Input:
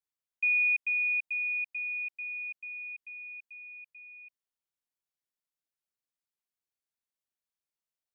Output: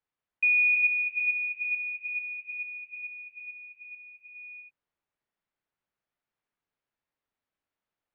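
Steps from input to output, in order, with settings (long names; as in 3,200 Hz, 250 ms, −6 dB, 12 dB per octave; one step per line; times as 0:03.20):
low-pass filter 2,200 Hz 12 dB per octave
reverb whose tail is shaped and stops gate 430 ms rising, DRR 2.5 dB
level +8 dB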